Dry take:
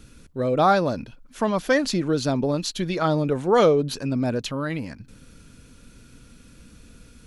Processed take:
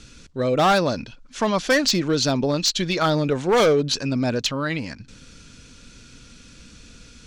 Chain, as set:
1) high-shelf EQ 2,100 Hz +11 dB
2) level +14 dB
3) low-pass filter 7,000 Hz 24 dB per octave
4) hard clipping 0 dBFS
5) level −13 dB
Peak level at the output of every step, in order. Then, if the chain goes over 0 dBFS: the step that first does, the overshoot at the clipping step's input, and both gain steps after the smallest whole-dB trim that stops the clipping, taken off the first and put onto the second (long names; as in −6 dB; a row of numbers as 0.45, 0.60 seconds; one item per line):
−2.5, +11.5, +9.5, 0.0, −13.0 dBFS
step 2, 9.5 dB
step 2 +4 dB, step 5 −3 dB